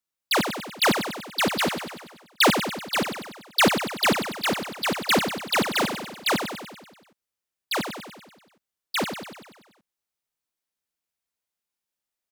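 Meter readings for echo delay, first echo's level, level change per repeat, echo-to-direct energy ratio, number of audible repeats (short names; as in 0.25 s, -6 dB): 96 ms, -7.5 dB, -4.5 dB, -5.5 dB, 7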